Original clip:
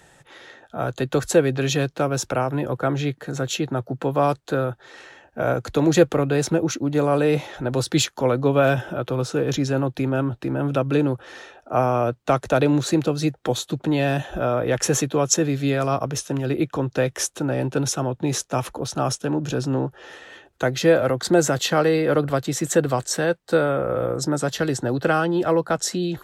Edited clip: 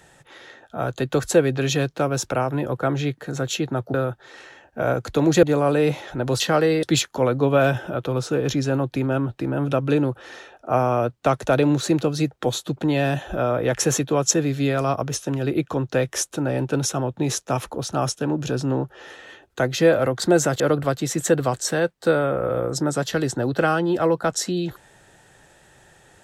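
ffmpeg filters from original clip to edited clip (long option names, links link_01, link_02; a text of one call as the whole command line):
ffmpeg -i in.wav -filter_complex "[0:a]asplit=6[link_01][link_02][link_03][link_04][link_05][link_06];[link_01]atrim=end=3.942[link_07];[link_02]atrim=start=4.538:end=6.032[link_08];[link_03]atrim=start=6.888:end=7.862[link_09];[link_04]atrim=start=21.628:end=22.062[link_10];[link_05]atrim=start=7.858:end=21.632[link_11];[link_06]atrim=start=22.058[link_12];[link_07][link_08]acrossfade=duration=0.004:curve1=hsin:curve2=hsin[link_13];[link_13][link_09]acrossfade=duration=0.004:curve1=hsin:curve2=hsin[link_14];[link_14][link_10]acrossfade=duration=0.004:curve1=hsin:curve2=hsin[link_15];[link_15][link_11]acrossfade=duration=0.004:curve1=hsin:curve2=hsin[link_16];[link_16][link_12]acrossfade=duration=0.004:curve1=hsin:curve2=hsin" out.wav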